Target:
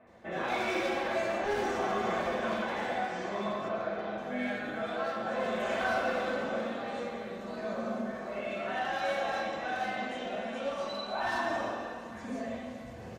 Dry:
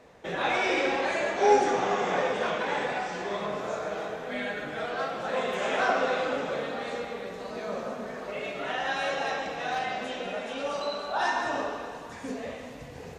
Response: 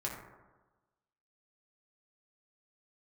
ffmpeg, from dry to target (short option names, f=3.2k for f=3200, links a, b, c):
-filter_complex "[0:a]asettb=1/sr,asplit=3[a][b][c];[a]atrim=end=3.614[d];[b]atrim=start=3.61:end=4.11,asetpts=PTS-STARTPTS,afade=t=in:d=0.004:c=qsin,afade=t=out:st=0.496:d=0.004:c=qsin,lowpass=f=4.5k:w=0.5412,lowpass=f=4.5k:w=1.3066[e];[c]atrim=start=4.106[f];[d][e]acrossfade=d=0.004:c1=hsin:c2=qsin[g];[g][f]acrossfade=d=0.004:c1=qsin:c2=hsin,asoftclip=type=hard:threshold=-25.5dB,acrossover=split=2700[h][i];[i]adelay=70[j];[h][j]amix=inputs=2:normalize=0[k];[1:a]atrim=start_sample=2205,asetrate=79380,aresample=44100[l];[k][l]afir=irnorm=-1:irlink=0"